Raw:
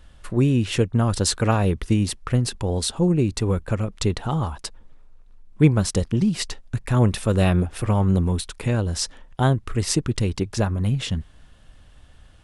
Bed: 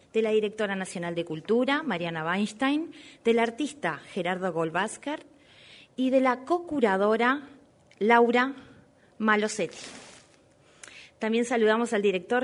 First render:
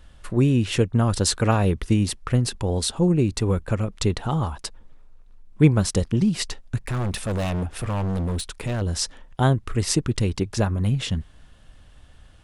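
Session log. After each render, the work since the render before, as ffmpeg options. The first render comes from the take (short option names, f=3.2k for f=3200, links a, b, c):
-filter_complex "[0:a]asettb=1/sr,asplit=3[a][b][c];[a]atrim=end=6.824[d];[b]atrim=start=6.82:end=8.82,asetpts=PTS-STARTPTS,afade=t=in:d=0.004:c=qsin,afade=t=out:st=1.996:d=0.004:c=qsin,asoftclip=type=hard:threshold=-22.5dB[e];[c]atrim=start=8.816[f];[d][e]acrossfade=d=0.004:c1=hsin:c2=qsin[g];[g][f]acrossfade=d=0.004:c1=qsin:c2=hsin"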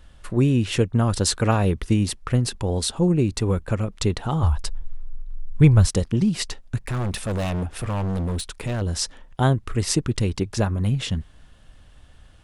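-filter_complex "[0:a]asplit=3[a][b][c];[a]afade=t=out:st=4.42:d=0.02[d];[b]asubboost=boost=9:cutoff=87,afade=t=in:st=4.42:d=0.02,afade=t=out:st=5.86:d=0.02[e];[c]afade=t=in:st=5.86:d=0.02[f];[d][e][f]amix=inputs=3:normalize=0"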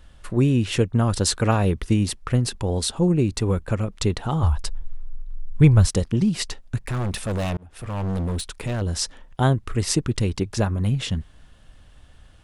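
-filter_complex "[0:a]asplit=2[a][b];[a]atrim=end=7.57,asetpts=PTS-STARTPTS,afade=t=out:st=7.566:d=0.004:c=hsin[c];[b]atrim=start=7.57,asetpts=PTS-STARTPTS,afade=t=in:d=0.52[d];[c][d]concat=n=2:v=0:a=1"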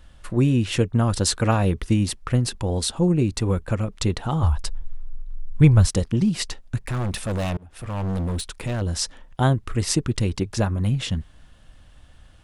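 -af "bandreject=f=420:w=12"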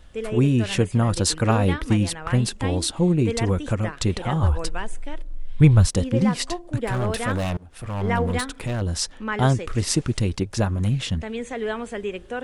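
-filter_complex "[1:a]volume=-5dB[a];[0:a][a]amix=inputs=2:normalize=0"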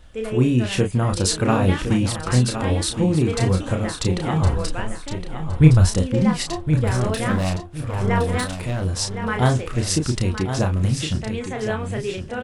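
-filter_complex "[0:a]asplit=2[a][b];[b]adelay=32,volume=-5dB[c];[a][c]amix=inputs=2:normalize=0,aecho=1:1:1064|2128|3192:0.355|0.0852|0.0204"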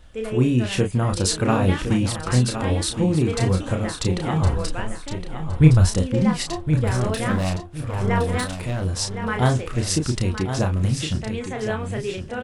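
-af "volume=-1dB"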